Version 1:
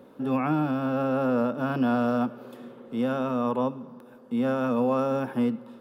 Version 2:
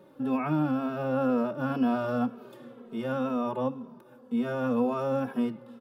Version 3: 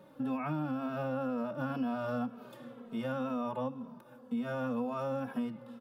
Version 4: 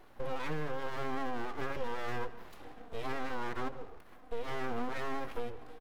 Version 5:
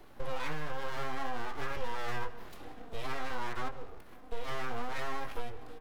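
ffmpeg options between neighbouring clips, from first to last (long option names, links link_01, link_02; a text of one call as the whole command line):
ffmpeg -i in.wav -filter_complex "[0:a]asplit=2[link_01][link_02];[link_02]adelay=2.8,afreqshift=-2[link_03];[link_01][link_03]amix=inputs=2:normalize=1" out.wav
ffmpeg -i in.wav -af "equalizer=frequency=380:width_type=o:width=0.3:gain=-12.5,acompressor=threshold=-32dB:ratio=4" out.wav
ffmpeg -i in.wav -filter_complex "[0:a]aeval=exprs='abs(val(0))':channel_layout=same,asplit=2[link_01][link_02];[link_02]adelay=157.4,volume=-17dB,highshelf=frequency=4000:gain=-3.54[link_03];[link_01][link_03]amix=inputs=2:normalize=0,volume=1dB" out.wav
ffmpeg -i in.wav -filter_complex "[0:a]acrossover=split=120|530|2900[link_01][link_02][link_03][link_04];[link_02]acompressor=threshold=-53dB:ratio=5[link_05];[link_03]flanger=delay=19.5:depth=4.9:speed=0.56[link_06];[link_01][link_05][link_06][link_04]amix=inputs=4:normalize=0,volume=4.5dB" out.wav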